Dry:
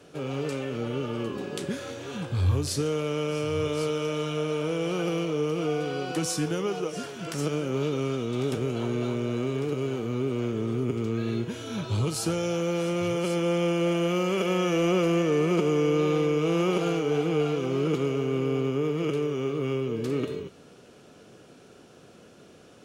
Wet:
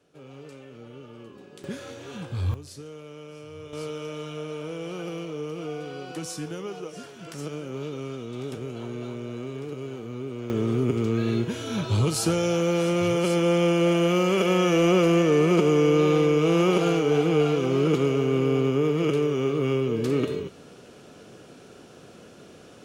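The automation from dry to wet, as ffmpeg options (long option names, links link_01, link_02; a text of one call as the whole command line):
ffmpeg -i in.wav -af "asetnsamples=nb_out_samples=441:pad=0,asendcmd='1.64 volume volume -3dB;2.54 volume volume -14dB;3.73 volume volume -6dB;10.5 volume volume 4dB',volume=-13.5dB" out.wav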